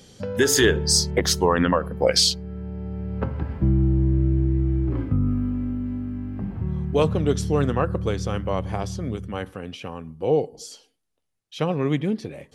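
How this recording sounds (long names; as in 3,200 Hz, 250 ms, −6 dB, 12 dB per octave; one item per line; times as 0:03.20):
background noise floor −66 dBFS
spectral slope −4.5 dB per octave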